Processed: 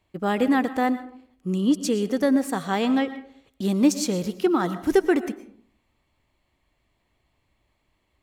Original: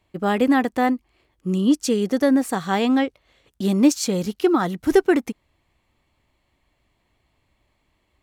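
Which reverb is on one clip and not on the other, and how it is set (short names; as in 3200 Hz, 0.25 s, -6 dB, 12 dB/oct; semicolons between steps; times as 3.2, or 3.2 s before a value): digital reverb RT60 0.58 s, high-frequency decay 0.45×, pre-delay 75 ms, DRR 13 dB; gain -3 dB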